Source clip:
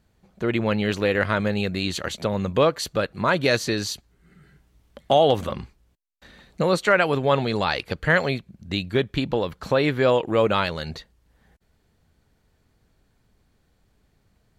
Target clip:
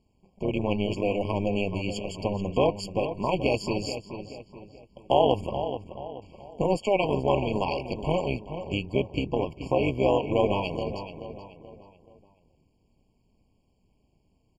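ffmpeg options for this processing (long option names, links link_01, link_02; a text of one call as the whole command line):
ffmpeg -i in.wav -filter_complex "[0:a]lowpass=frequency=9200:width=0.5412,lowpass=frequency=9200:width=1.3066,tremolo=f=200:d=0.857,asplit=2[link_01][link_02];[link_02]adelay=430,lowpass=frequency=3100:poles=1,volume=-9.5dB,asplit=2[link_03][link_04];[link_04]adelay=430,lowpass=frequency=3100:poles=1,volume=0.41,asplit=2[link_05][link_06];[link_06]adelay=430,lowpass=frequency=3100:poles=1,volume=0.41,asplit=2[link_07][link_08];[link_08]adelay=430,lowpass=frequency=3100:poles=1,volume=0.41[link_09];[link_03][link_05][link_07][link_09]amix=inputs=4:normalize=0[link_10];[link_01][link_10]amix=inputs=2:normalize=0,afftfilt=real='re*eq(mod(floor(b*sr/1024/1100),2),0)':imag='im*eq(mod(floor(b*sr/1024/1100),2),0)':win_size=1024:overlap=0.75" out.wav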